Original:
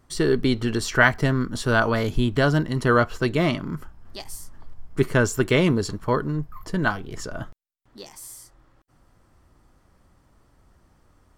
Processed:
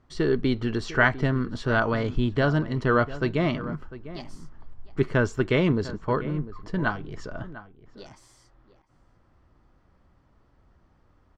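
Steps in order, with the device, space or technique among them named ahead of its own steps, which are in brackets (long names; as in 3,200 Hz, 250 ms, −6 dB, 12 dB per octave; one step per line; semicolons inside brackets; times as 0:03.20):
shout across a valley (high-frequency loss of the air 150 metres; slap from a distant wall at 120 metres, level −15 dB)
level −2.5 dB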